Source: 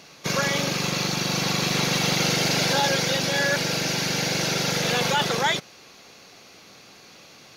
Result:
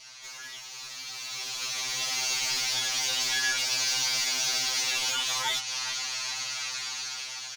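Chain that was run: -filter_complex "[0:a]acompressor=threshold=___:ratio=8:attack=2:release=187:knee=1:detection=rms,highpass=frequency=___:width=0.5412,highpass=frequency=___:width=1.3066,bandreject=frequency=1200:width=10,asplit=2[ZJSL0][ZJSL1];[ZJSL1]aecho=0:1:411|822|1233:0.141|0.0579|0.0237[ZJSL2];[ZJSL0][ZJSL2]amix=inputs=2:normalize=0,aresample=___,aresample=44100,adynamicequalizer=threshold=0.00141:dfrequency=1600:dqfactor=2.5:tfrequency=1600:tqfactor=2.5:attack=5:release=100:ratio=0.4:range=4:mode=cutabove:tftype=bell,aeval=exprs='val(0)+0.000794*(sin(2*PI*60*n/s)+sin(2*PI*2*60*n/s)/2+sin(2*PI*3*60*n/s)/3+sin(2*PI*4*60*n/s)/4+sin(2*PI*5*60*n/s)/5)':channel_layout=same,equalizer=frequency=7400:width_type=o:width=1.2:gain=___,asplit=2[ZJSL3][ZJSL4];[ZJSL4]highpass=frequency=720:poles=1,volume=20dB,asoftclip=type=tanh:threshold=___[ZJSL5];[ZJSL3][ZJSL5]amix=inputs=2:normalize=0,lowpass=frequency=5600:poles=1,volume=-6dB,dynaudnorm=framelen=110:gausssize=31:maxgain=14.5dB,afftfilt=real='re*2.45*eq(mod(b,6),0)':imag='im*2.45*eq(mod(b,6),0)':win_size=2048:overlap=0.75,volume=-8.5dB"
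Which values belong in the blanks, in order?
-32dB, 900, 900, 22050, 7.5, -23.5dB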